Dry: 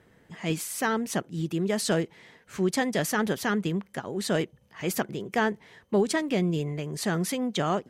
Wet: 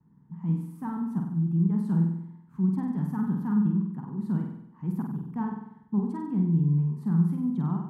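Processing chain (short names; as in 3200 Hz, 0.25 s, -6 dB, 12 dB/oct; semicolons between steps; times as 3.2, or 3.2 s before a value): gate with hold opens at -51 dBFS; EQ curve 100 Hz 0 dB, 160 Hz +14 dB, 240 Hz +8 dB, 610 Hz -24 dB, 920 Hz +4 dB, 1300 Hz -9 dB, 2300 Hz -25 dB, 6700 Hz -30 dB, 12000 Hz -19 dB; on a send: flutter echo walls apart 8.2 m, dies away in 0.77 s; on the sum: gain -8.5 dB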